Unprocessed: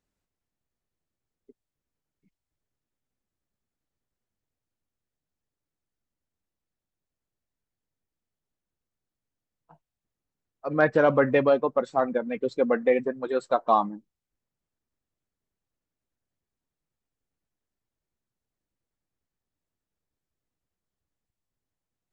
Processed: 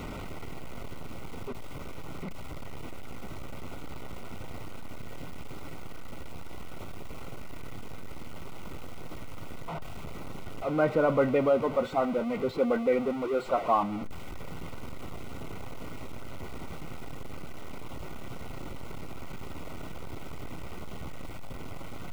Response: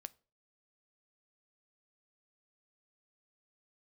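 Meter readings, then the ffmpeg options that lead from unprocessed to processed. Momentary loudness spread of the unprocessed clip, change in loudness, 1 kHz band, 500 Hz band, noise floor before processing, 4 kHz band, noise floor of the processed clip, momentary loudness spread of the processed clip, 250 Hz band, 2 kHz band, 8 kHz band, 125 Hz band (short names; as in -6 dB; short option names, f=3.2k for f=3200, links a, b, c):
10 LU, -9.5 dB, -3.0 dB, -3.0 dB, under -85 dBFS, +4.0 dB, -37 dBFS, 19 LU, -0.5 dB, -6.0 dB, n/a, +3.0 dB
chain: -filter_complex "[0:a]aeval=exprs='val(0)+0.5*0.0631*sgn(val(0))':c=same[a];[1:a]atrim=start_sample=2205[b];[a][b]afir=irnorm=-1:irlink=0,acrossover=split=2800[c][d];[d]acompressor=threshold=-57dB:ratio=4:attack=1:release=60[e];[c][e]amix=inputs=2:normalize=0,asuperstop=centerf=1700:order=20:qfactor=5.1"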